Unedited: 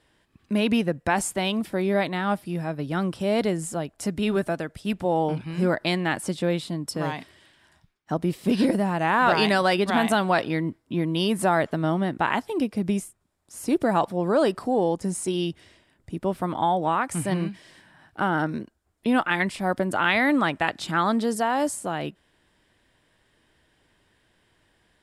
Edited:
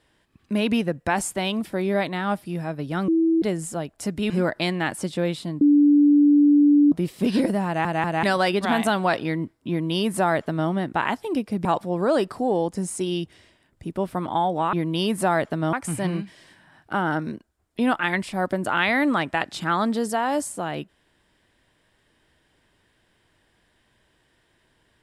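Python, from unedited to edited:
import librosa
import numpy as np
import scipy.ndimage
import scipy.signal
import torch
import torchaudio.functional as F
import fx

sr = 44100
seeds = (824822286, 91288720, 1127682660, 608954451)

y = fx.edit(x, sr, fx.bleep(start_s=3.08, length_s=0.34, hz=327.0, db=-16.0),
    fx.cut(start_s=4.3, length_s=1.25),
    fx.bleep(start_s=6.86, length_s=1.31, hz=291.0, db=-12.0),
    fx.stutter_over(start_s=8.91, slice_s=0.19, count=3),
    fx.duplicate(start_s=10.94, length_s=1.0, to_s=17.0),
    fx.cut(start_s=12.9, length_s=1.02), tone=tone)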